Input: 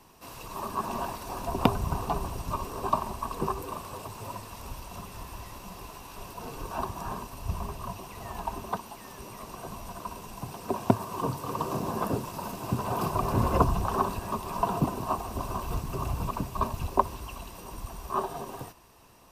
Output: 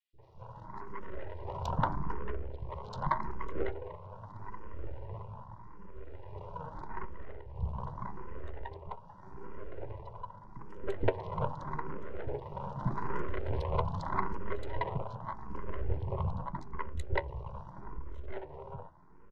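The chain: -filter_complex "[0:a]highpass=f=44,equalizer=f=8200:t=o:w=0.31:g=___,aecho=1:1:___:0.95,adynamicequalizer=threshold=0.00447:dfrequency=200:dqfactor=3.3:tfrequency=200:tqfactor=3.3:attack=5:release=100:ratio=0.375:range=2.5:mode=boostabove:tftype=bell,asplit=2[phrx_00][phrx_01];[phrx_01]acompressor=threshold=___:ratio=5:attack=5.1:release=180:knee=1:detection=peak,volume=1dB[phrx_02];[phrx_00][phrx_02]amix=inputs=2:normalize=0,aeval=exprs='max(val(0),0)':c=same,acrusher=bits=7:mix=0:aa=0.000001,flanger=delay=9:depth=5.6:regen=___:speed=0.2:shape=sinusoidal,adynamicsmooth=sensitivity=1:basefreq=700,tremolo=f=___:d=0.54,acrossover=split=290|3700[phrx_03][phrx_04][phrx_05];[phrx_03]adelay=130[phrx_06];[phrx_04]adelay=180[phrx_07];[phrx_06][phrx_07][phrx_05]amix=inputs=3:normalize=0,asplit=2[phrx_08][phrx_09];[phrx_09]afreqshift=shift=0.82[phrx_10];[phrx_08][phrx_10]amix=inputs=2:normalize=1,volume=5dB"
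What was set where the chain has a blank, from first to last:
-4.5, 2.1, -35dB, 53, 0.63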